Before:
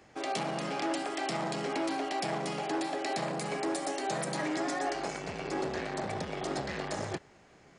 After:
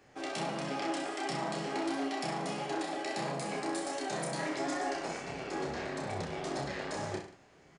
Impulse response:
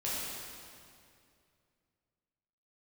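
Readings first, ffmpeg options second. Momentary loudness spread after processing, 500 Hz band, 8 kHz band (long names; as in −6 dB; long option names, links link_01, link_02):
4 LU, −2.5 dB, −2.0 dB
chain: -af "flanger=delay=6.9:depth=6.4:regen=47:speed=1.5:shape=sinusoidal,aecho=1:1:30|63|99.3|139.2|183.2:0.631|0.398|0.251|0.158|0.1"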